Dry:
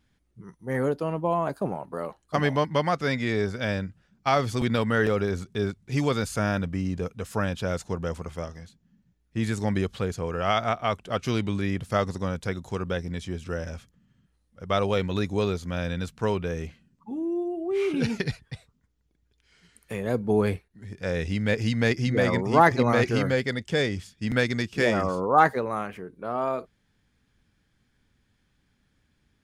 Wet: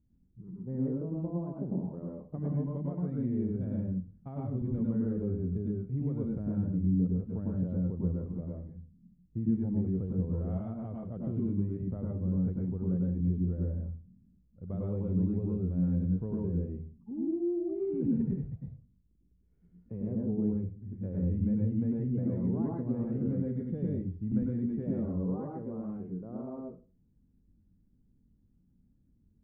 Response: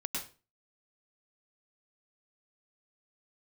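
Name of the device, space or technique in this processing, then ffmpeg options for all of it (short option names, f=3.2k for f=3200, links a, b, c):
television next door: -filter_complex "[0:a]acompressor=threshold=-28dB:ratio=3,lowpass=260[a];[1:a]atrim=start_sample=2205[b];[a][b]afir=irnorm=-1:irlink=0"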